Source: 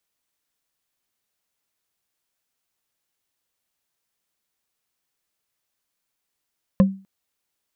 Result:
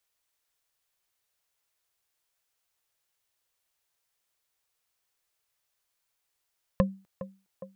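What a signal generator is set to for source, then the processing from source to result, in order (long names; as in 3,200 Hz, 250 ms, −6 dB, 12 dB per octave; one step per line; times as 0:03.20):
struck wood, length 0.25 s, lowest mode 193 Hz, decay 0.34 s, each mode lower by 7 dB, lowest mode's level −8 dB
parametric band 230 Hz −14.5 dB 0.83 octaves
feedback echo with a band-pass in the loop 411 ms, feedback 75%, band-pass 440 Hz, level −11.5 dB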